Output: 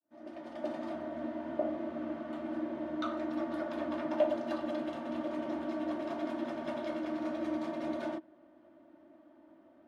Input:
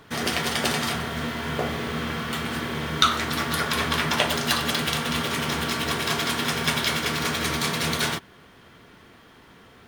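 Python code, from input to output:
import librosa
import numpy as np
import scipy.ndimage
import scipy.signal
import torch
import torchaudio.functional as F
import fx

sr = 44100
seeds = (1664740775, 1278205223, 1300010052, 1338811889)

y = fx.fade_in_head(x, sr, length_s=1.04)
y = fx.double_bandpass(y, sr, hz=440.0, octaves=0.93)
y = y + 0.55 * np.pad(y, (int(3.3 * sr / 1000.0), 0))[:len(y)]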